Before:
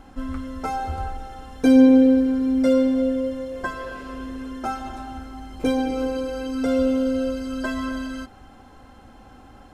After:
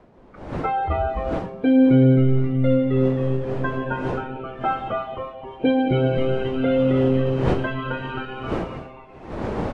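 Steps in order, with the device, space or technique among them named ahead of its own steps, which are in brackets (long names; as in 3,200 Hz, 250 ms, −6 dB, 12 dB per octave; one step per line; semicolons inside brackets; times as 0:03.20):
Butterworth low-pass 3,400 Hz 48 dB per octave
noise reduction from a noise print of the clip's start 22 dB
0:04.88–0:05.42: Butterworth high-pass 830 Hz 36 dB per octave
echo with shifted repeats 265 ms, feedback 55%, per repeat −130 Hz, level −3 dB
smartphone video outdoors (wind on the microphone 510 Hz −36 dBFS; automatic gain control gain up to 12 dB; level −6.5 dB; AAC 48 kbit/s 24,000 Hz)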